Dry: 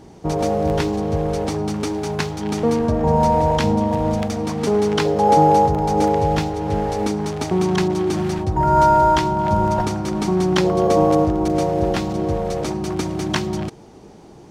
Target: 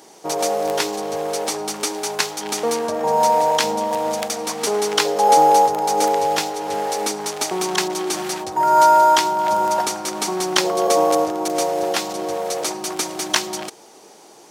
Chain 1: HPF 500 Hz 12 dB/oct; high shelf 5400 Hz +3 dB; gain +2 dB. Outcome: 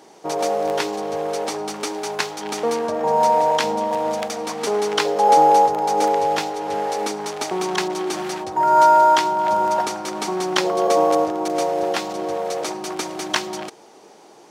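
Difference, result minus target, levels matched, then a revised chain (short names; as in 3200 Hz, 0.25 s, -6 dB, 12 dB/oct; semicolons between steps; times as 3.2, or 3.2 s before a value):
8000 Hz band -6.5 dB
HPF 500 Hz 12 dB/oct; high shelf 5400 Hz +14.5 dB; gain +2 dB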